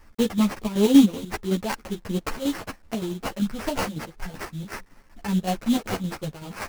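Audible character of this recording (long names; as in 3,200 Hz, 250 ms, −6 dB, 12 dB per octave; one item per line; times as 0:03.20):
aliases and images of a low sample rate 3,600 Hz, jitter 20%
chopped level 5.3 Hz, depth 60%, duty 55%
a quantiser's noise floor 10 bits, dither none
a shimmering, thickened sound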